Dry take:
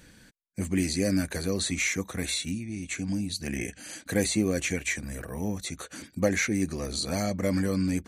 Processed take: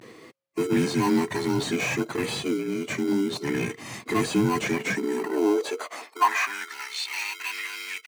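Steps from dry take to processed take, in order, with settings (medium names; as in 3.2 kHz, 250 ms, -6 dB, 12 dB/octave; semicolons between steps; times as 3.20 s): every band turned upside down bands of 500 Hz; vibrato 0.55 Hz 78 cents; overdrive pedal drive 22 dB, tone 1.8 kHz, clips at -9.5 dBFS; in parallel at -6 dB: sample-and-hold 25×; on the sum: high-pass sweep 120 Hz -> 2.3 kHz, 4.59–6.97 s; trim -6 dB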